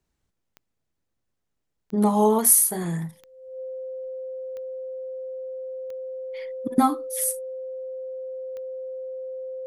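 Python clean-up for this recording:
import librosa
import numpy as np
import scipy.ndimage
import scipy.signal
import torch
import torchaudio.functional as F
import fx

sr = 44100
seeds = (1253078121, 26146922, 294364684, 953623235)

y = fx.fix_declick_ar(x, sr, threshold=10.0)
y = fx.notch(y, sr, hz=520.0, q=30.0)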